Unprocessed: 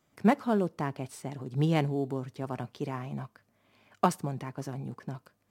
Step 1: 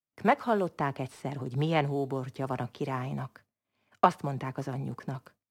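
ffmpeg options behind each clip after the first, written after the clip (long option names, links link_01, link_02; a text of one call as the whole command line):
ffmpeg -i in.wav -filter_complex "[0:a]acrossover=split=3700[link_01][link_02];[link_02]acompressor=threshold=-58dB:ratio=4:attack=1:release=60[link_03];[link_01][link_03]amix=inputs=2:normalize=0,agate=range=-33dB:threshold=-52dB:ratio=3:detection=peak,acrossover=split=110|430|5700[link_04][link_05][link_06][link_07];[link_05]acompressor=threshold=-39dB:ratio=6[link_08];[link_04][link_08][link_06][link_07]amix=inputs=4:normalize=0,volume=4.5dB" out.wav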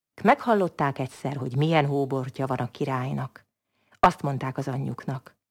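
ffmpeg -i in.wav -af "aeval=exprs='clip(val(0),-1,0.211)':channel_layout=same,volume=5.5dB" out.wav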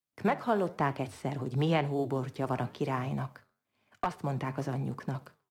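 ffmpeg -i in.wav -af "alimiter=limit=-13dB:level=0:latency=1:release=278,flanger=delay=3.1:depth=9:regen=-87:speed=1:shape=triangular,aecho=1:1:67|134:0.0794|0.027" out.wav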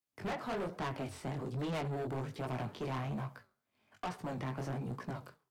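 ffmpeg -i in.wav -af "flanger=delay=16:depth=7.7:speed=1.2,asoftclip=type=tanh:threshold=-36dB,volume=2dB" out.wav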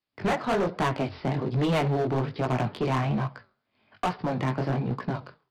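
ffmpeg -i in.wav -filter_complex "[0:a]aresample=11025,aresample=44100,asplit=2[link_01][link_02];[link_02]acrusher=bits=5:mix=0:aa=0.5,volume=-4dB[link_03];[link_01][link_03]amix=inputs=2:normalize=0,volume=7.5dB" out.wav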